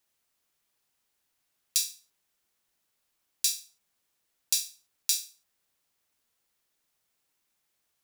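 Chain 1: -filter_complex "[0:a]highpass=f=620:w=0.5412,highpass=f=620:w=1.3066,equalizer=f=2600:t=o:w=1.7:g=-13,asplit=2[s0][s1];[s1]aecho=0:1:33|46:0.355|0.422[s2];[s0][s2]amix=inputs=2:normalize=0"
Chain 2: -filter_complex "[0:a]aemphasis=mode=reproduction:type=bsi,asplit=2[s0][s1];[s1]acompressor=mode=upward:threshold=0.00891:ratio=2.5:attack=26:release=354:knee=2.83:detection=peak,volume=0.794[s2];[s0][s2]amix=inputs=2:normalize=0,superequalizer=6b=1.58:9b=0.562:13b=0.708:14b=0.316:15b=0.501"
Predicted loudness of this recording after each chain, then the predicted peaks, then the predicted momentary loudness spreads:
-31.0 LUFS, -36.0 LUFS; -4.5 dBFS, -8.0 dBFS; 7 LU, 11 LU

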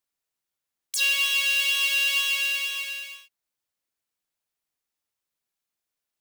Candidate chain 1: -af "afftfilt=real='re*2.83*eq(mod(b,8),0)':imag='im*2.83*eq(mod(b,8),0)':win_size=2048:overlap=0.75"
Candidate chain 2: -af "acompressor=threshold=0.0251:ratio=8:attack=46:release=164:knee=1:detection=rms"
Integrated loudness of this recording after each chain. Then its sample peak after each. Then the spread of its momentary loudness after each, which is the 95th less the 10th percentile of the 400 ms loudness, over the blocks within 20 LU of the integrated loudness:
-23.5 LUFS, -31.0 LUFS; -14.0 dBFS, -16.5 dBFS; 11 LU, 6 LU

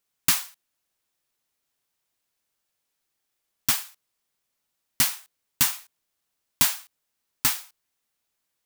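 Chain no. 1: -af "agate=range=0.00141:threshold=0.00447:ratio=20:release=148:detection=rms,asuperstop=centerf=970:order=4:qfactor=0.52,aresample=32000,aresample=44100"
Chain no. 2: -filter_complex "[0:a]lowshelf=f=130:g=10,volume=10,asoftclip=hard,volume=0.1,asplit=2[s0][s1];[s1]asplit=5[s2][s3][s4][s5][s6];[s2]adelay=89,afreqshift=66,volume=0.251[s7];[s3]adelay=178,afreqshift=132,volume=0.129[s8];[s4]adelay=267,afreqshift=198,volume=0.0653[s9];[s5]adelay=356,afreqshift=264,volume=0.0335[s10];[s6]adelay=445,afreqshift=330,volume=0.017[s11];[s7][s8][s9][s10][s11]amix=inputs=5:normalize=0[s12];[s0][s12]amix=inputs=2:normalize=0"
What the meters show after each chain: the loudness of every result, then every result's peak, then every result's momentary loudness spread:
-26.0 LUFS, -28.0 LUFS; -5.5 dBFS, -17.5 dBFS; 16 LU, 16 LU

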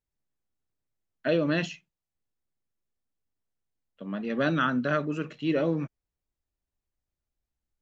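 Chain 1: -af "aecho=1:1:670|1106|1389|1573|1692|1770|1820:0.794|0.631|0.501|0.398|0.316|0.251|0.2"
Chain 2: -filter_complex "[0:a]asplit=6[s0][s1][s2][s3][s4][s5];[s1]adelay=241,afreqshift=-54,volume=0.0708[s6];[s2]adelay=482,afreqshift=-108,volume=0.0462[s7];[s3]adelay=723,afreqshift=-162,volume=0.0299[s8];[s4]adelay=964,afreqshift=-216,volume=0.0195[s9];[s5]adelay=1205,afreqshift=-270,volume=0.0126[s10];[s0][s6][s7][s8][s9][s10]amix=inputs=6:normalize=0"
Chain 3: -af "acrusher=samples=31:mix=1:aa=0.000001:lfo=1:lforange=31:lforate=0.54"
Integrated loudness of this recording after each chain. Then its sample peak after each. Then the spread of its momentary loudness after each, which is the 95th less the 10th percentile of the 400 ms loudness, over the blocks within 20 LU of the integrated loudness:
-27.5 LUFS, -28.5 LUFS, -28.5 LUFS; -11.5 dBFS, -12.5 dBFS, -14.0 dBFS; 10 LU, 12 LU, 12 LU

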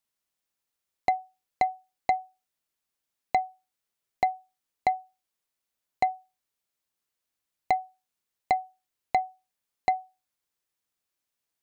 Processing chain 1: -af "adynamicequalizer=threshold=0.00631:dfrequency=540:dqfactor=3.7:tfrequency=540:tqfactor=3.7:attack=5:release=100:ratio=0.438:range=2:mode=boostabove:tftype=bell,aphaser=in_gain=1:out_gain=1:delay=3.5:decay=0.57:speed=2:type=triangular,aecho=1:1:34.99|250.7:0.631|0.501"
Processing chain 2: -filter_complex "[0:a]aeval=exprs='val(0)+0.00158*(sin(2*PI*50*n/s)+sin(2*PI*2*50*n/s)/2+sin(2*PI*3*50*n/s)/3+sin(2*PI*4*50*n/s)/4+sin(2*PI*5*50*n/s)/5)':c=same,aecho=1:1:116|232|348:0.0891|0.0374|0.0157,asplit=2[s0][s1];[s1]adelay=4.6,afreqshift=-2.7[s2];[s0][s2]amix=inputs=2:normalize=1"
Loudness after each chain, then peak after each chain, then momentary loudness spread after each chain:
-28.0 LUFS, -33.5 LUFS; -7.0 dBFS, -14.0 dBFS; 12 LU, 17 LU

